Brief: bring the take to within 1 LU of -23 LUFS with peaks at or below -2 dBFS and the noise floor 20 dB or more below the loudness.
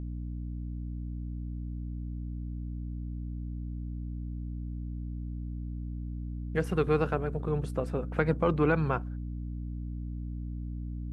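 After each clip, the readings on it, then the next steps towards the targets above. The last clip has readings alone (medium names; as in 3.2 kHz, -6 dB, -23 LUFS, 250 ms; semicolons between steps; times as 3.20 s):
hum 60 Hz; highest harmonic 300 Hz; hum level -34 dBFS; loudness -34.0 LUFS; peak level -11.5 dBFS; loudness target -23.0 LUFS
-> de-hum 60 Hz, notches 5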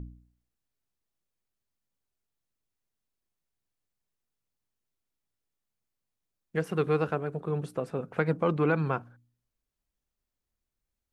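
hum not found; loudness -30.0 LUFS; peak level -11.0 dBFS; loudness target -23.0 LUFS
-> trim +7 dB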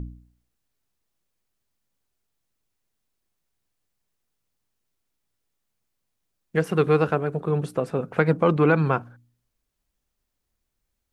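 loudness -23.0 LUFS; peak level -4.0 dBFS; noise floor -79 dBFS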